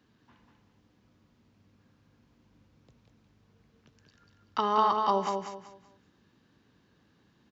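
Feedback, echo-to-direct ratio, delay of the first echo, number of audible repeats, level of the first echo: 30%, -4.0 dB, 191 ms, 3, -4.5 dB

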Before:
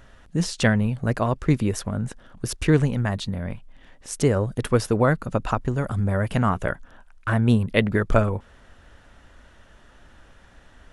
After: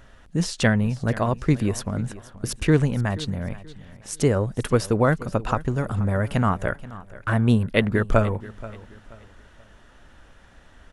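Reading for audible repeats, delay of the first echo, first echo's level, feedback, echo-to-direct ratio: 2, 480 ms, -18.0 dB, 32%, -17.5 dB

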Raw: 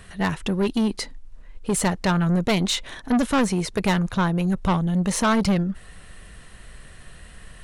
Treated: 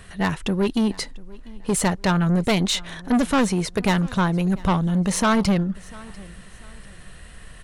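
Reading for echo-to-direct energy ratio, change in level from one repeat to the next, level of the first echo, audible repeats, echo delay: -22.0 dB, -9.5 dB, -22.5 dB, 2, 694 ms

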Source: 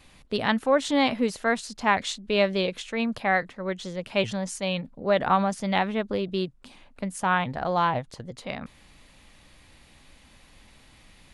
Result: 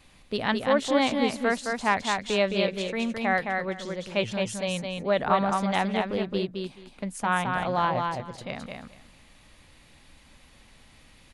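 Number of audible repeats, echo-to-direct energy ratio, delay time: 3, -4.0 dB, 215 ms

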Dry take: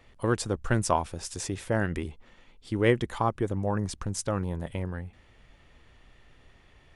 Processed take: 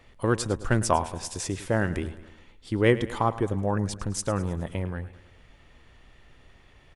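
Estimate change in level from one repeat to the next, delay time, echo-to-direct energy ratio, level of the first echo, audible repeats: -5.5 dB, 106 ms, -14.5 dB, -16.0 dB, 4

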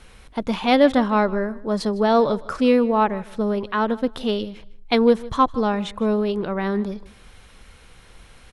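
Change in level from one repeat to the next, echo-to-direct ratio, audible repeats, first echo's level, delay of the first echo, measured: -13.0 dB, -20.0 dB, 2, -20.0 dB, 156 ms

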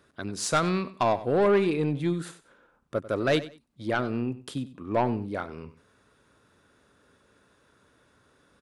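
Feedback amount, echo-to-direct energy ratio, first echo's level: 23%, -16.0 dB, -16.0 dB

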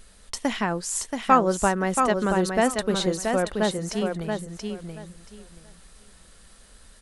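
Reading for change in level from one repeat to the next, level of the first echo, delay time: -14.5 dB, -5.0 dB, 679 ms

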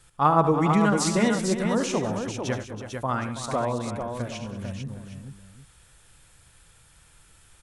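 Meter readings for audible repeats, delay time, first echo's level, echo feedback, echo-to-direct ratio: 5, 73 ms, -10.0 dB, no regular repeats, -3.0 dB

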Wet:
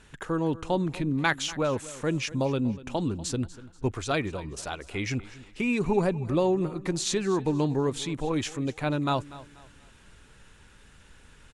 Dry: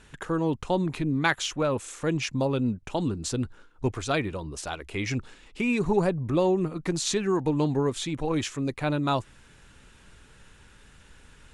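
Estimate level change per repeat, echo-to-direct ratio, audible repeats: -9.5 dB, -17.5 dB, 2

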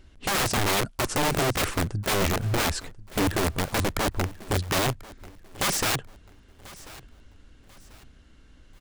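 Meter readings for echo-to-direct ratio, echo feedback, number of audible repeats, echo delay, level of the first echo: -19.5 dB, 33%, 2, 1040 ms, -20.0 dB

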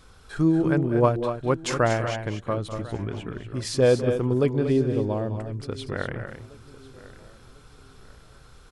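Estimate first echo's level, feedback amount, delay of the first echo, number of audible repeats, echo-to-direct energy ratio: -13.0 dB, no regular repeats, 201 ms, 6, -7.0 dB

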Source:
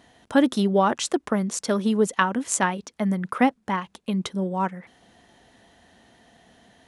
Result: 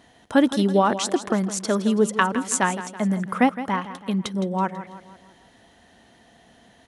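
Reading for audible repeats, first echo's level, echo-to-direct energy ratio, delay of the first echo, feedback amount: 4, -13.0 dB, -12.0 dB, 164 ms, 48%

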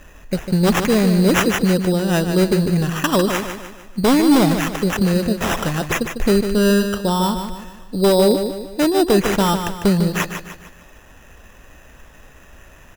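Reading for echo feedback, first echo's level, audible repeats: 43%, -8.0 dB, 4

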